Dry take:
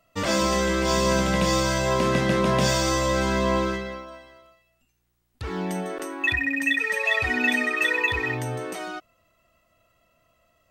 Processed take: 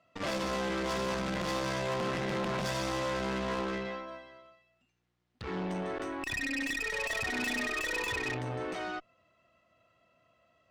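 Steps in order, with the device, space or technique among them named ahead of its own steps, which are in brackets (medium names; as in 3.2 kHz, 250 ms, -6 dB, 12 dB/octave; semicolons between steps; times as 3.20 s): valve radio (band-pass 97–4300 Hz; valve stage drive 29 dB, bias 0.55; transformer saturation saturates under 250 Hz)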